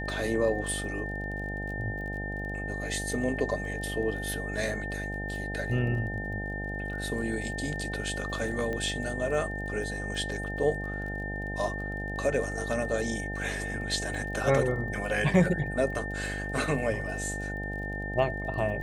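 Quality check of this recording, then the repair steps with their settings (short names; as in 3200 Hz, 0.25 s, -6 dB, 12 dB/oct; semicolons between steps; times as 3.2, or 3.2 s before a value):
buzz 50 Hz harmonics 17 -36 dBFS
crackle 25/s -39 dBFS
tone 1800 Hz -36 dBFS
8.73 pop -22 dBFS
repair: de-click; notch 1800 Hz, Q 30; de-hum 50 Hz, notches 17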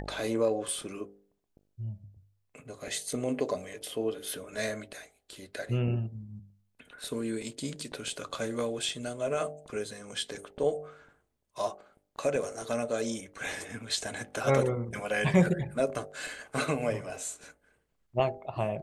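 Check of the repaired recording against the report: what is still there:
none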